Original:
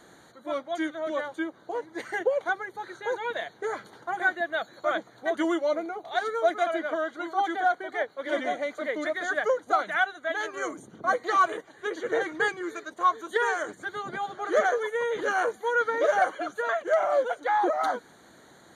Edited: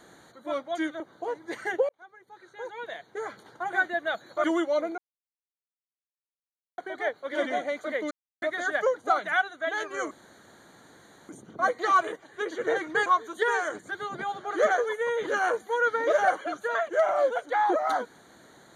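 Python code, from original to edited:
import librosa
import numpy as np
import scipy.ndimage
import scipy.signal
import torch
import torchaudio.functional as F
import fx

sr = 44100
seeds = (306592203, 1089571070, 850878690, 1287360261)

y = fx.edit(x, sr, fx.cut(start_s=1.0, length_s=0.47),
    fx.fade_in_span(start_s=2.36, length_s=2.0),
    fx.cut(start_s=4.91, length_s=0.47),
    fx.silence(start_s=5.92, length_s=1.8),
    fx.insert_silence(at_s=9.05, length_s=0.31),
    fx.insert_room_tone(at_s=10.74, length_s=1.18),
    fx.cut(start_s=12.51, length_s=0.49), tone=tone)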